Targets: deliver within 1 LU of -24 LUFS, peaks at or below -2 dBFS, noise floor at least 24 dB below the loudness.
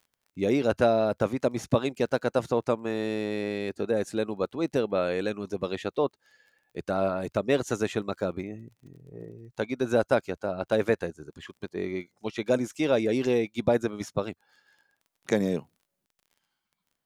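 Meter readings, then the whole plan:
tick rate 24 per s; loudness -28.5 LUFS; peak level -9.0 dBFS; loudness target -24.0 LUFS
-> de-click; trim +4.5 dB

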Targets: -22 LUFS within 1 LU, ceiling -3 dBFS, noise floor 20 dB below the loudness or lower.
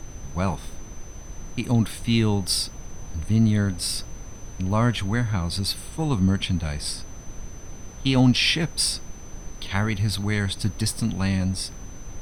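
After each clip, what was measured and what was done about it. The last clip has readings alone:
steady tone 6.1 kHz; tone level -47 dBFS; noise floor -40 dBFS; noise floor target -44 dBFS; loudness -24.0 LUFS; peak level -7.0 dBFS; loudness target -22.0 LUFS
-> band-stop 6.1 kHz, Q 30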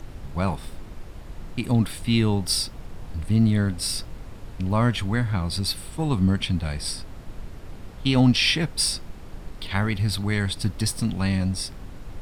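steady tone not found; noise floor -40 dBFS; noise floor target -44 dBFS
-> noise print and reduce 6 dB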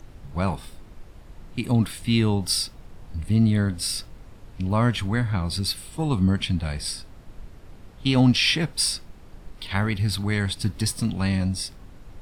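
noise floor -46 dBFS; loudness -24.0 LUFS; peak level -7.0 dBFS; loudness target -22.0 LUFS
-> trim +2 dB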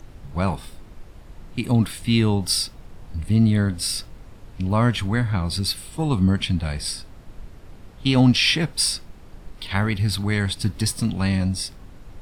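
loudness -22.0 LUFS; peak level -5.0 dBFS; noise floor -44 dBFS

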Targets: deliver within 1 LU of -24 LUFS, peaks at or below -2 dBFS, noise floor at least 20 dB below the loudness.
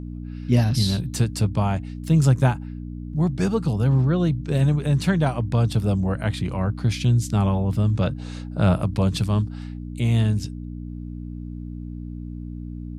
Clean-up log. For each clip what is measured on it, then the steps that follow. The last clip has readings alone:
hum 60 Hz; highest harmonic 300 Hz; hum level -31 dBFS; loudness -22.0 LUFS; peak level -4.0 dBFS; loudness target -24.0 LUFS
-> de-hum 60 Hz, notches 5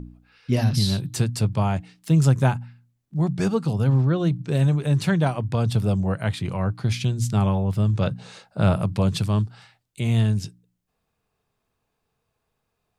hum not found; loudness -23.0 LUFS; peak level -5.0 dBFS; loudness target -24.0 LUFS
-> trim -1 dB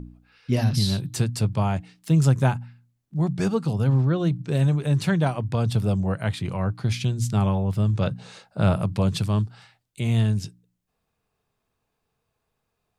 loudness -24.0 LUFS; peak level -6.0 dBFS; noise floor -78 dBFS

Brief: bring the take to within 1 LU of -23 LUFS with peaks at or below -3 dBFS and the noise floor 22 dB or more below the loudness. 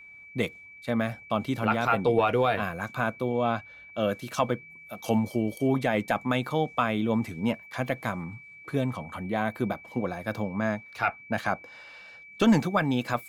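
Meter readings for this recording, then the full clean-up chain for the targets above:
steady tone 2.3 kHz; tone level -46 dBFS; loudness -28.0 LUFS; peak level -12.5 dBFS; loudness target -23.0 LUFS
-> band-stop 2.3 kHz, Q 30; trim +5 dB

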